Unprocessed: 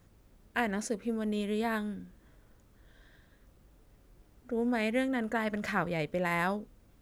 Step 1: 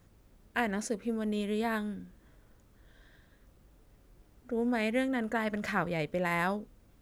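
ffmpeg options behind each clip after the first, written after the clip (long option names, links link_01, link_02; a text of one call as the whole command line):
ffmpeg -i in.wav -af anull out.wav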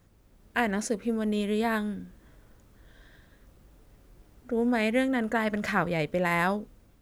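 ffmpeg -i in.wav -af "dynaudnorm=framelen=170:gausssize=5:maxgain=4.5dB" out.wav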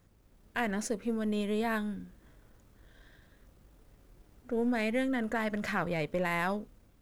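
ffmpeg -i in.wav -filter_complex "[0:a]aeval=exprs='if(lt(val(0),0),0.708*val(0),val(0))':channel_layout=same,asplit=2[link_01][link_02];[link_02]alimiter=limit=-21.5dB:level=0:latency=1,volume=0dB[link_03];[link_01][link_03]amix=inputs=2:normalize=0,volume=-8dB" out.wav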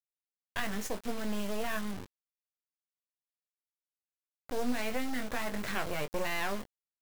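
ffmpeg -i in.wav -filter_complex "[0:a]acrusher=bits=4:dc=4:mix=0:aa=0.000001,asplit=2[link_01][link_02];[link_02]adelay=20,volume=-8dB[link_03];[link_01][link_03]amix=inputs=2:normalize=0" out.wav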